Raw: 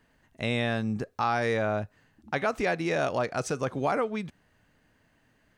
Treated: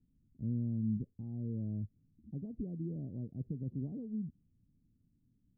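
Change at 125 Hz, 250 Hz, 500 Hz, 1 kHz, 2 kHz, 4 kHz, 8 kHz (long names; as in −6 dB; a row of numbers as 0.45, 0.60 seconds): −2.5 dB, −5.0 dB, −24.5 dB, below −40 dB, below −40 dB, below −40 dB, below −35 dB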